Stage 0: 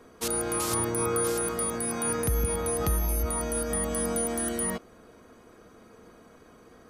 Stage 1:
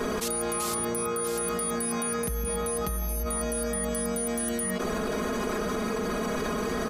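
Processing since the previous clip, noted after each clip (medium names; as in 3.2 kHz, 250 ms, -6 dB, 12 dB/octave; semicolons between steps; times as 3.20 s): comb 4.8 ms, depth 69%; level flattener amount 100%; trim -7.5 dB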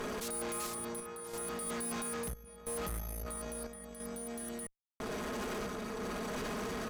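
random-step tremolo 3 Hz, depth 100%; valve stage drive 38 dB, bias 0.75; trim +2 dB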